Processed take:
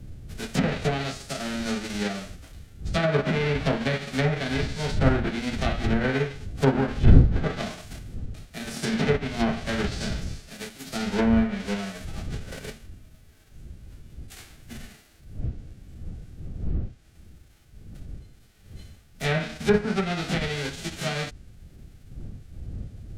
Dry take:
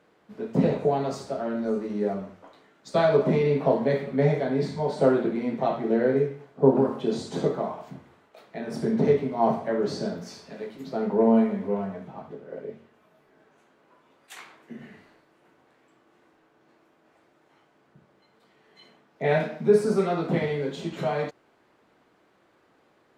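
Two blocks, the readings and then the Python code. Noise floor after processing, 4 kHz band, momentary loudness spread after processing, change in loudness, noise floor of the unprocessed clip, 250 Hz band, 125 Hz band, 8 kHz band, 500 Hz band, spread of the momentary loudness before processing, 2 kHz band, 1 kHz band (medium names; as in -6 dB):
-53 dBFS, +9.5 dB, 20 LU, -1.5 dB, -64 dBFS, -0.5 dB, +5.5 dB, no reading, -5.5 dB, 18 LU, +7.0 dB, -2.5 dB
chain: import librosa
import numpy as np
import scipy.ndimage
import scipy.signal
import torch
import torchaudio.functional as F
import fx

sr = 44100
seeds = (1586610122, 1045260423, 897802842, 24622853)

y = fx.envelope_flatten(x, sr, power=0.3)
y = fx.dmg_wind(y, sr, seeds[0], corner_hz=91.0, level_db=-29.0)
y = fx.peak_eq(y, sr, hz=980.0, db=-12.5, octaves=0.29)
y = fx.env_lowpass_down(y, sr, base_hz=1600.0, full_db=-16.5)
y = y * librosa.db_to_amplitude(-1.0)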